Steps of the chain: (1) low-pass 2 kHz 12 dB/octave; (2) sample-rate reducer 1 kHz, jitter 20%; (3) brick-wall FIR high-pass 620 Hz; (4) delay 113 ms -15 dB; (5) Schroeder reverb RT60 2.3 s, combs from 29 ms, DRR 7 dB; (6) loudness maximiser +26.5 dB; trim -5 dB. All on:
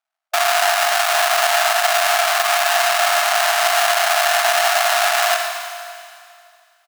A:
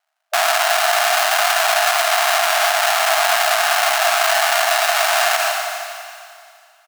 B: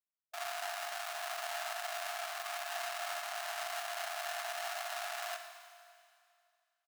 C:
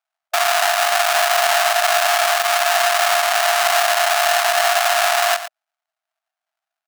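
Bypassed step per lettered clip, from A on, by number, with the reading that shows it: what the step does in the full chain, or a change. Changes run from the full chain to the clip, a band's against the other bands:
1, momentary loudness spread change +2 LU; 6, crest factor change +3.0 dB; 5, momentary loudness spread change -4 LU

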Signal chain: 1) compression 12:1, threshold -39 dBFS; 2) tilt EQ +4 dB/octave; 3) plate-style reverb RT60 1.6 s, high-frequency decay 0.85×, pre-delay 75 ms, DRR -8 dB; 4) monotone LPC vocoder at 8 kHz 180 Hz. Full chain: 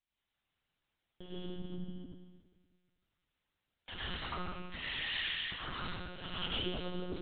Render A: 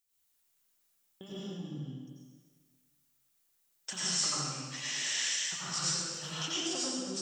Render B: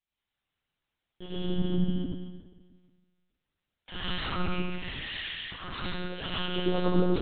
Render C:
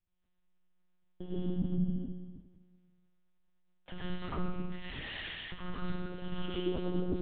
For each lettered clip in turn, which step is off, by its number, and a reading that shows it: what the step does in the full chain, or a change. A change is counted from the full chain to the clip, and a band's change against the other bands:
4, 4 kHz band +3.5 dB; 1, mean gain reduction 9.0 dB; 2, 4 kHz band -13.5 dB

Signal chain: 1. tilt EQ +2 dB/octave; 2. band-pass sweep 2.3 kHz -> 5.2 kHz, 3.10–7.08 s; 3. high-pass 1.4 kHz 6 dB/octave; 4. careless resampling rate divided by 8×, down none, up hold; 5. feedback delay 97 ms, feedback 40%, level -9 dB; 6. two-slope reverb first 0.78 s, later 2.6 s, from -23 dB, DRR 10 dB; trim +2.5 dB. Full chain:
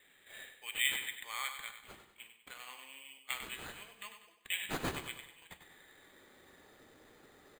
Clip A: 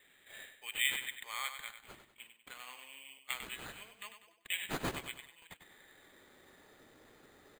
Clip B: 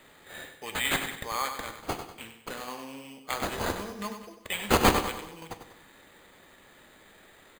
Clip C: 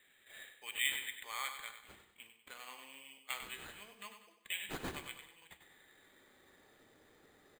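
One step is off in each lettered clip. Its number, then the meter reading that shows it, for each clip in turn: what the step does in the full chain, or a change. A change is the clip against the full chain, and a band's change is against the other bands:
6, echo-to-direct -6.0 dB to -8.0 dB; 2, 4 kHz band -9.5 dB; 1, 125 Hz band -3.5 dB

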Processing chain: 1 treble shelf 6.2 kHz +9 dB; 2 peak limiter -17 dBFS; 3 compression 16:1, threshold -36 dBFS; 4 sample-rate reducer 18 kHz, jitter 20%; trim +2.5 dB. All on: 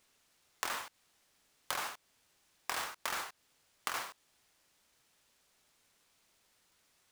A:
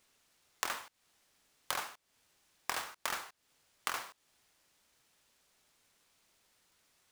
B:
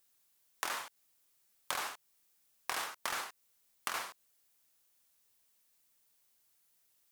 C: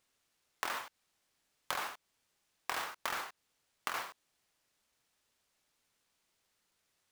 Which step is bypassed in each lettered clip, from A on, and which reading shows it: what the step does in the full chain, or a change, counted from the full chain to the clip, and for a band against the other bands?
2, mean gain reduction 3.5 dB; 4, 125 Hz band -2.5 dB; 1, 8 kHz band -4.5 dB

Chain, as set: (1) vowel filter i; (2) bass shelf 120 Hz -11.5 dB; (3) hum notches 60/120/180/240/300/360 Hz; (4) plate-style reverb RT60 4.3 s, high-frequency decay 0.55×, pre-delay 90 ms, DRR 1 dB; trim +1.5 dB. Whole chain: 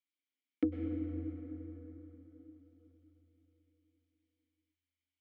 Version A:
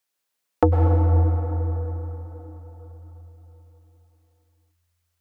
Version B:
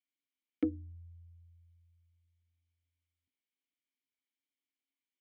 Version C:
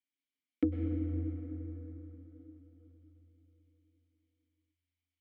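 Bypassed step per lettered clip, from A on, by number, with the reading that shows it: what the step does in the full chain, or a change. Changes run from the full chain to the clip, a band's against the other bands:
1, crest factor change -6.5 dB; 4, crest factor change +3.0 dB; 2, crest factor change -1.5 dB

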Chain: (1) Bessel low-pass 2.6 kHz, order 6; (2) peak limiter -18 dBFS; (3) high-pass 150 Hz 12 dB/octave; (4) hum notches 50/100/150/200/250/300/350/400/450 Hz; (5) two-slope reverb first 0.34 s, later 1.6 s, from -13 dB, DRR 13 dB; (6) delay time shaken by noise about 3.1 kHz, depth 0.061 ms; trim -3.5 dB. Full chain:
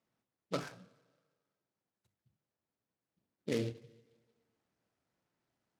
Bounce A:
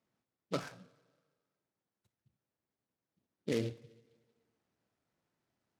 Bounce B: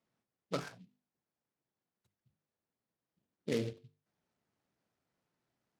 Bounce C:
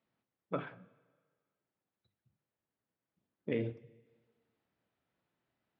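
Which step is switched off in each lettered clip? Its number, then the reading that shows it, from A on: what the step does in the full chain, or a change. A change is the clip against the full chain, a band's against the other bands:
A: 4, momentary loudness spread change +1 LU; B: 5, momentary loudness spread change -3 LU; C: 6, 4 kHz band -10.0 dB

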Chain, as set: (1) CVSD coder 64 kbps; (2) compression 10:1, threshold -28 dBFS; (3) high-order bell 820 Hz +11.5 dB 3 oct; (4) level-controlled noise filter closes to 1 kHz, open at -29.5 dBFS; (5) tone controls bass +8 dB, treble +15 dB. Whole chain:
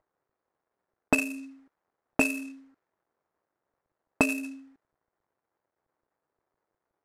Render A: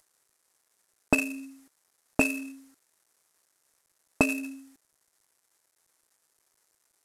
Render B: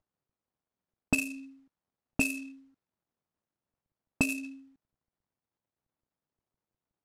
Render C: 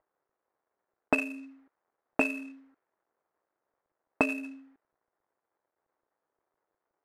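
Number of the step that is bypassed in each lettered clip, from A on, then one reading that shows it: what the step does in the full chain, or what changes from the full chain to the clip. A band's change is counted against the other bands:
4, 125 Hz band +3.0 dB; 3, 1 kHz band -9.5 dB; 5, 8 kHz band -11.0 dB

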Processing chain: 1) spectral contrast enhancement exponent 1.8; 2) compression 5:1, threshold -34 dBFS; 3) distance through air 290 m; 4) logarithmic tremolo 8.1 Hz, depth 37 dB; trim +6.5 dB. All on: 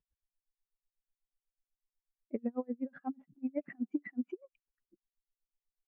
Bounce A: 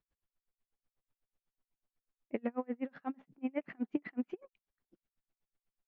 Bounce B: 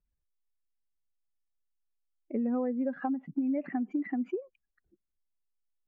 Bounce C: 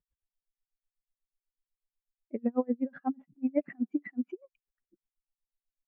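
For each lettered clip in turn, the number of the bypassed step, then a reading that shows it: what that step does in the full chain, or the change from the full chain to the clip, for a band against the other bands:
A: 1, 250 Hz band -3.0 dB; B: 4, crest factor change -3.5 dB; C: 2, momentary loudness spread change +2 LU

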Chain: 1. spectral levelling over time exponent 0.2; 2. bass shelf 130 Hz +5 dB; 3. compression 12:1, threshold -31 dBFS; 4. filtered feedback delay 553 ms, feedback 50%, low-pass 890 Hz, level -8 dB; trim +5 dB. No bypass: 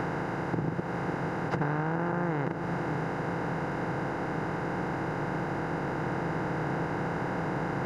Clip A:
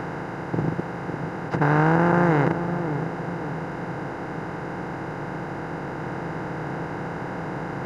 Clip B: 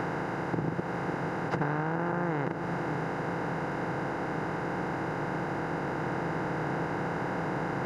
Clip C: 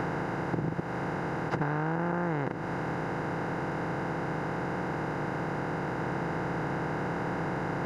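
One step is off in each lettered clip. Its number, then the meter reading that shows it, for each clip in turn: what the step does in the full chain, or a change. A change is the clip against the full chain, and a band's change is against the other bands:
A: 3, mean gain reduction 2.0 dB; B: 2, 125 Hz band -2.0 dB; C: 4, echo-to-direct -12.5 dB to none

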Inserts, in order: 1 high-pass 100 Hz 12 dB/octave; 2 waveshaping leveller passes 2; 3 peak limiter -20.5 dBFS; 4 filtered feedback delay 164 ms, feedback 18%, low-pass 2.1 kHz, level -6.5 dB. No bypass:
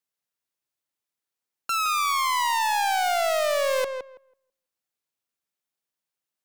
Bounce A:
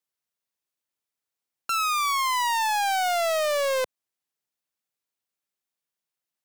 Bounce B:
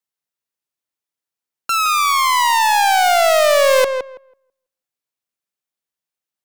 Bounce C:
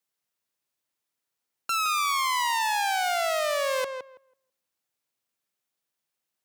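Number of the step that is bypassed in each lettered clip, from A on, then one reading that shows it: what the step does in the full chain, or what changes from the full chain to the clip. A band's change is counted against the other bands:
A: 4, echo-to-direct -8.5 dB to none; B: 3, mean gain reduction 9.5 dB; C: 2, 500 Hz band -3.0 dB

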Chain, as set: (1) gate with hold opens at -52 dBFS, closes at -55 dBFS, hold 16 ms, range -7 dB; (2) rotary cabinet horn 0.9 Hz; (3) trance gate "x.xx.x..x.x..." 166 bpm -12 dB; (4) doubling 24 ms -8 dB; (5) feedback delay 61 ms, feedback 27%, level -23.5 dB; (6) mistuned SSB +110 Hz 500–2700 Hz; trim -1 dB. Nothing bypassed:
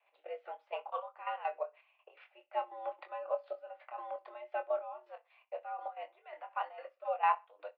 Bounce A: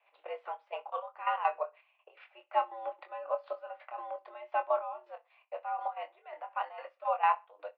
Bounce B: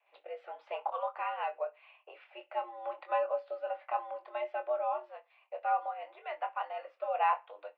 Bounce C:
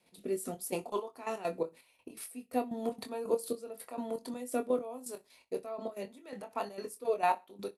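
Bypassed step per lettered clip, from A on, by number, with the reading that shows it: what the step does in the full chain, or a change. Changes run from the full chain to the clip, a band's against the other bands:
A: 2, crest factor change -2.0 dB; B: 3, crest factor change -3.5 dB; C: 6, crest factor change -3.0 dB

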